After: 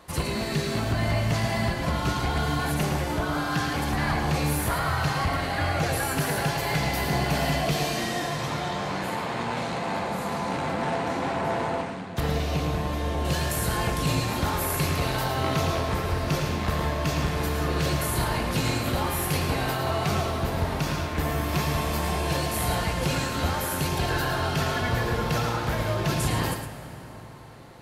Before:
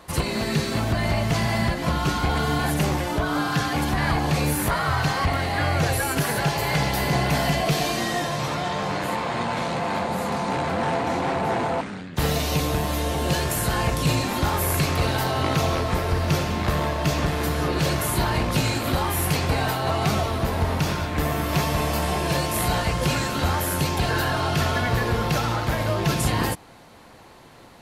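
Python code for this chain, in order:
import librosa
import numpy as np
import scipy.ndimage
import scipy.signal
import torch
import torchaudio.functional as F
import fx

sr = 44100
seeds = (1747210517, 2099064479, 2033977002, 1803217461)

y = fx.lowpass(x, sr, hz=2700.0, slope=6, at=(12.2, 13.25))
y = y + 10.0 ** (-7.5 / 20.0) * np.pad(y, (int(110 * sr / 1000.0), 0))[:len(y)]
y = fx.rev_plate(y, sr, seeds[0], rt60_s=4.7, hf_ratio=0.6, predelay_ms=0, drr_db=9.5)
y = y * 10.0 ** (-4.0 / 20.0)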